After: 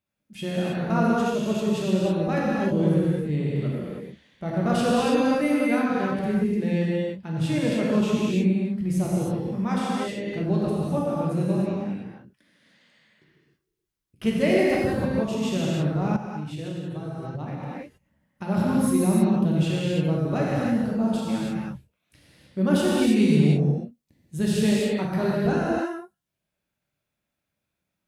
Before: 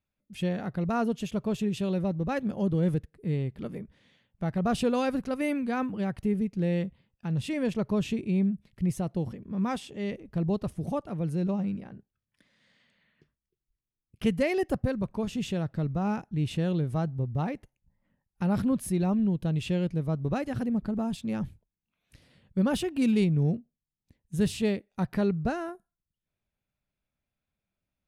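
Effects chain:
high-pass filter 120 Hz 6 dB per octave
reverb whose tail is shaped and stops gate 350 ms flat, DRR −6 dB
0:16.16–0:18.47: downward compressor 12 to 1, threshold −29 dBFS, peak gain reduction 13 dB

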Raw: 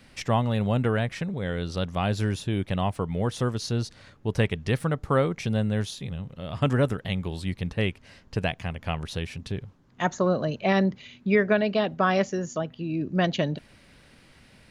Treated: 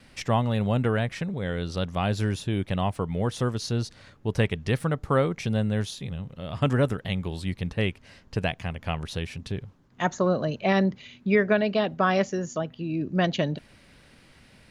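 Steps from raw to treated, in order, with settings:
noise gate with hold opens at −52 dBFS

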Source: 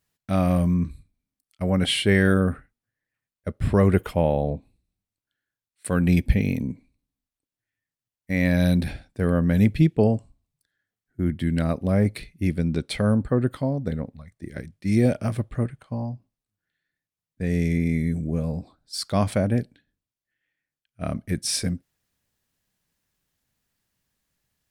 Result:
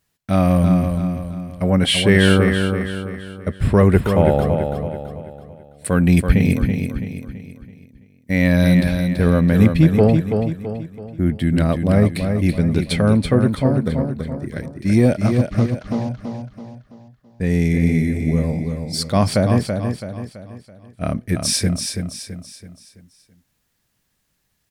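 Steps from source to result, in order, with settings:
0:15.26–0:16.09: variable-slope delta modulation 32 kbit/s
in parallel at −9 dB: soft clipping −17 dBFS, distortion −12 dB
on the sum: repeating echo 331 ms, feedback 43%, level −6 dB
level +3.5 dB

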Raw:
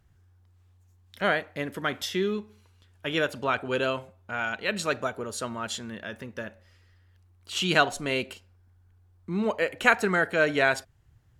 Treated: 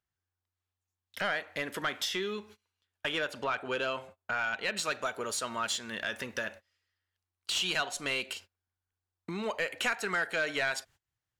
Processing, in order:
high-shelf EQ 2,900 Hz +8 dB, from 0:03.12 +3 dB, from 0:04.77 +11.5 dB
noise gate −46 dBFS, range −28 dB
downward compressor 3 to 1, threshold −39 dBFS, peak gain reduction 20 dB
mid-hump overdrive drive 15 dB, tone 4,200 Hz, clips at −18 dBFS

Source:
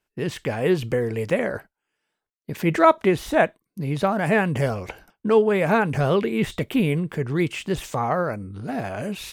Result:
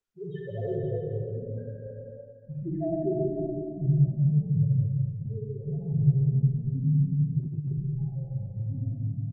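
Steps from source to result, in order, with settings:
spectral peaks only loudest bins 1
0:00.68–0:01.47: high shelf with overshoot 6,700 Hz −7.5 dB, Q 3
0:03.98–0:04.81: notch filter 830 Hz, Q 12
tuned comb filter 67 Hz, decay 1.2 s, harmonics all, mix 40%
low-pass filter sweep 2,600 Hz → 130 Hz, 0:00.56–0:04.04
dynamic equaliser 230 Hz, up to −6 dB, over −42 dBFS, Q 0.93
bouncing-ball delay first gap 190 ms, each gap 0.9×, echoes 5
convolution reverb RT60 1.2 s, pre-delay 43 ms, DRR −2 dB
0:01.10–0:02.07: healed spectral selection 260–1,400 Hz both
0:07.39–0:07.80: compressor whose output falls as the input rises −33 dBFS, ratio −0.5
comb filter 7.3 ms, depth 62%
Opus 24 kbit/s 48,000 Hz

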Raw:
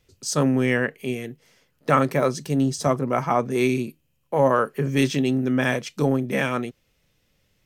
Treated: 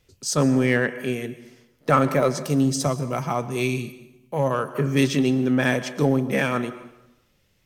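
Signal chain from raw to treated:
dense smooth reverb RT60 0.94 s, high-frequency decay 0.8×, pre-delay 105 ms, DRR 14 dB
0:02.86–0:04.75: gain on a spectral selection 200–2,300 Hz −6 dB
in parallel at −5 dB: asymmetric clip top −20 dBFS
0:02.44–0:03.46: on the sum: high-shelf EQ 5,200 Hz +4.5 dB
level −2.5 dB

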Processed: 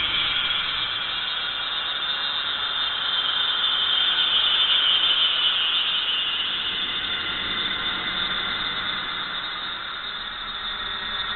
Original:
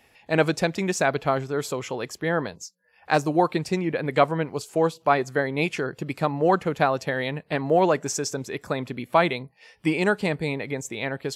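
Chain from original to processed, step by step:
loose part that buzzes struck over −32 dBFS, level −20 dBFS
harmonic and percussive parts rebalanced percussive +4 dB
extreme stretch with random phases 21×, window 0.25 s, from 0:03.19
harmonic generator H 2 −14 dB, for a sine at −4 dBFS
on a send at −1 dB: convolution reverb RT60 0.65 s, pre-delay 96 ms
on the sum: voice inversion scrambler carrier 3,900 Hz
high-frequency loss of the air 360 metres
feedback echo with a high-pass in the loop 592 ms, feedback 70%, level −11 dB

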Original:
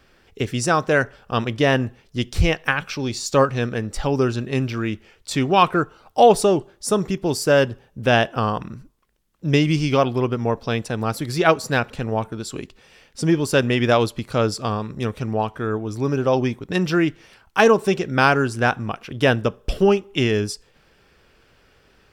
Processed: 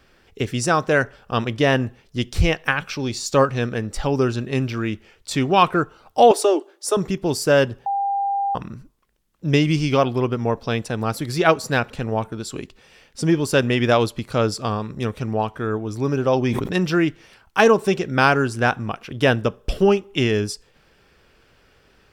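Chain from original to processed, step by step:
0:06.31–0:06.97: Butterworth high-pass 280 Hz 72 dB per octave
0:07.86–0:08.55: beep over 797 Hz −19 dBFS
0:16.43–0:16.85: level that may fall only so fast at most 33 dB per second

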